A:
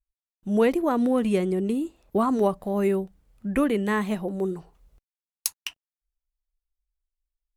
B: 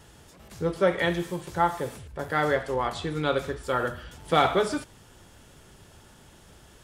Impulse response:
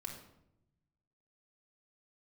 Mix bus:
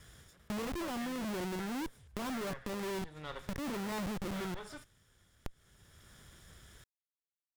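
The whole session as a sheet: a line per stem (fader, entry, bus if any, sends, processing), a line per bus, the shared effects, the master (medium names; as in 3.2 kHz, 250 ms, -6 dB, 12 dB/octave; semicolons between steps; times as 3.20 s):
-2.0 dB, 0.00 s, no send, band-stop 470 Hz, Q 14; slow attack 109 ms; Schmitt trigger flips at -30.5 dBFS
-2.5 dB, 0.00 s, no send, comb filter that takes the minimum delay 0.57 ms; peaking EQ 290 Hz -6.5 dB 1.5 oct; auto duck -11 dB, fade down 0.30 s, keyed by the first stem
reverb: none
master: compression 4:1, threshold -38 dBFS, peak gain reduction 9.5 dB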